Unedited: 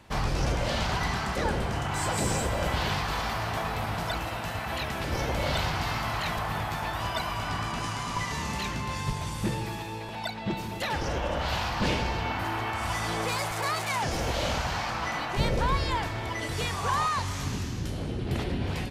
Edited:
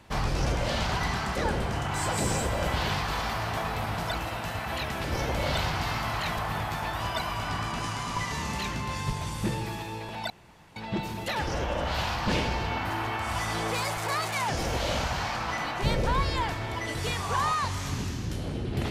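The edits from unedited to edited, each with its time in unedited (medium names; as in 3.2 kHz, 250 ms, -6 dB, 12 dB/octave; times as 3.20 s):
10.30 s: insert room tone 0.46 s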